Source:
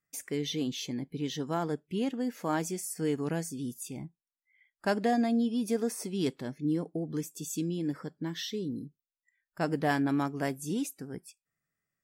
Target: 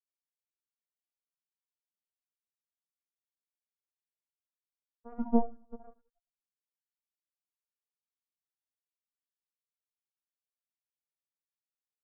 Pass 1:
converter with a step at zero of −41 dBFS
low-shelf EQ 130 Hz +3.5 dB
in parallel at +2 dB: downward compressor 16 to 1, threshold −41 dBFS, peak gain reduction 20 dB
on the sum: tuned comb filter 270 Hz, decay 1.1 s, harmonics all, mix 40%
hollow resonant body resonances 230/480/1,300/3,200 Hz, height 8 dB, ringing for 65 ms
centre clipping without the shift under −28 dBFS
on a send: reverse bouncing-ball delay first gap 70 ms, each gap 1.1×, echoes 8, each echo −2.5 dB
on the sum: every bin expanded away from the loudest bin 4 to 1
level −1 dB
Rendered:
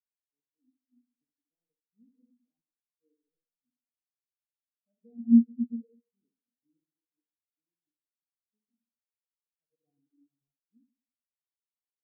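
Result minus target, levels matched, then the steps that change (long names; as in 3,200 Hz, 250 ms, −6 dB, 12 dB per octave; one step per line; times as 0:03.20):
centre clipping without the shift: distortion −17 dB; converter with a step at zero: distortion +6 dB
change: converter with a step at zero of −47 dBFS
change: centre clipping without the shift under −16.5 dBFS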